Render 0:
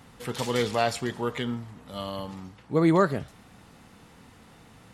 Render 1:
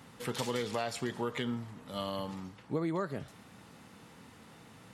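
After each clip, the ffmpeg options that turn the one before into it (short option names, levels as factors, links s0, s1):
-af "highpass=100,bandreject=f=730:w=20,acompressor=threshold=0.0398:ratio=16,volume=0.841"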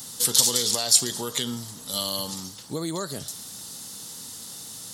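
-filter_complex "[0:a]asplit=2[s0][s1];[s1]alimiter=level_in=1.5:limit=0.0631:level=0:latency=1:release=55,volume=0.668,volume=0.891[s2];[s0][s2]amix=inputs=2:normalize=0,aexciter=amount=13.7:drive=4.4:freq=3600,volume=0.794"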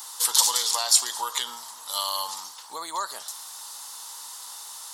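-af "highpass=f=960:t=q:w=4.1,volume=0.891"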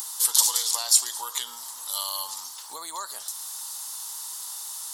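-filter_complex "[0:a]asplit=2[s0][s1];[s1]acompressor=mode=upward:threshold=0.0447:ratio=2.5,volume=1.26[s2];[s0][s2]amix=inputs=2:normalize=0,crystalizer=i=1.5:c=0,volume=0.211"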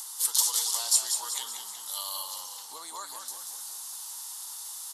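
-filter_complex "[0:a]asplit=7[s0][s1][s2][s3][s4][s5][s6];[s1]adelay=187,afreqshift=-36,volume=0.473[s7];[s2]adelay=374,afreqshift=-72,volume=0.243[s8];[s3]adelay=561,afreqshift=-108,volume=0.123[s9];[s4]adelay=748,afreqshift=-144,volume=0.0631[s10];[s5]adelay=935,afreqshift=-180,volume=0.032[s11];[s6]adelay=1122,afreqshift=-216,volume=0.0164[s12];[s0][s7][s8][s9][s10][s11][s12]amix=inputs=7:normalize=0,volume=0.531" -ar 32000 -c:a libvorbis -b:a 48k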